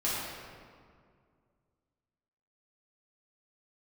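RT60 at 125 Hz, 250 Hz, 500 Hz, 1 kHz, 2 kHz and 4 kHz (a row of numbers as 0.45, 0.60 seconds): 2.7, 2.5, 2.2, 2.0, 1.6, 1.2 seconds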